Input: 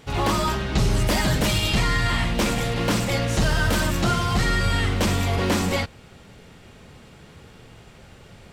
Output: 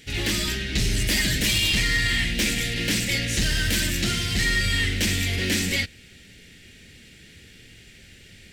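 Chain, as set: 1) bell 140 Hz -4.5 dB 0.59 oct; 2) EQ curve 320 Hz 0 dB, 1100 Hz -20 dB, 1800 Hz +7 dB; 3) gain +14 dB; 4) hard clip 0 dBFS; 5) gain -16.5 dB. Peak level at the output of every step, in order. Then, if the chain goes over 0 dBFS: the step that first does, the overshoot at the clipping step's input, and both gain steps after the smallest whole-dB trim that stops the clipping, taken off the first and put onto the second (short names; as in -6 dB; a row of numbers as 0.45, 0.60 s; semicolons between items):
-12.0, -5.5, +8.5, 0.0, -16.5 dBFS; step 3, 8.5 dB; step 3 +5 dB, step 5 -7.5 dB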